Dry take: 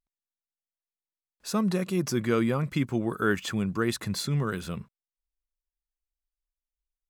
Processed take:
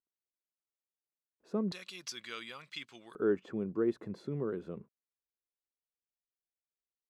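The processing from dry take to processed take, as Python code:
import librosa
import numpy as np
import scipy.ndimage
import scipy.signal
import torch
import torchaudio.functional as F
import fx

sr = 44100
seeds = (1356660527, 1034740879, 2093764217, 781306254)

y = fx.bandpass_q(x, sr, hz=fx.steps((0.0, 370.0), (1.72, 3700.0), (3.15, 390.0)), q=1.9)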